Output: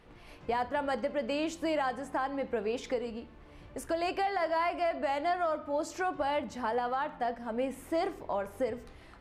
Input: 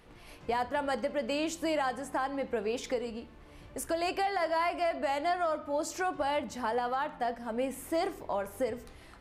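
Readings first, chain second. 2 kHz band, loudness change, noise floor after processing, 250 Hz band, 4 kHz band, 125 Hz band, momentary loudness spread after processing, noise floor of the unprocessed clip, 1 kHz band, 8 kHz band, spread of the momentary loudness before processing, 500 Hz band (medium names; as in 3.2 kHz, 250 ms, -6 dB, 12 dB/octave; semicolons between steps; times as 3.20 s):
-1.0 dB, -0.5 dB, -53 dBFS, 0.0 dB, -2.5 dB, 0.0 dB, 6 LU, -53 dBFS, 0.0 dB, -6.0 dB, 6 LU, 0.0 dB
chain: low-pass 4 kHz 6 dB/octave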